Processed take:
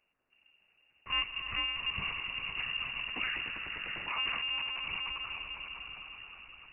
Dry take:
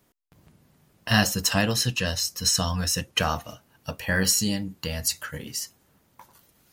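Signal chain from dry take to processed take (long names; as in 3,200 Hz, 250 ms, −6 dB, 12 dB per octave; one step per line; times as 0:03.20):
tuned comb filter 290 Hz, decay 0.31 s, harmonics odd, mix 50%
background noise blue −59 dBFS
echo that builds up and dies away 99 ms, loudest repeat 5, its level −10 dB
one-pitch LPC vocoder at 8 kHz 250 Hz
voice inversion scrambler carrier 2,800 Hz
0:02.84–0:05.18: level that may fall only so fast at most 23 dB per second
level −7.5 dB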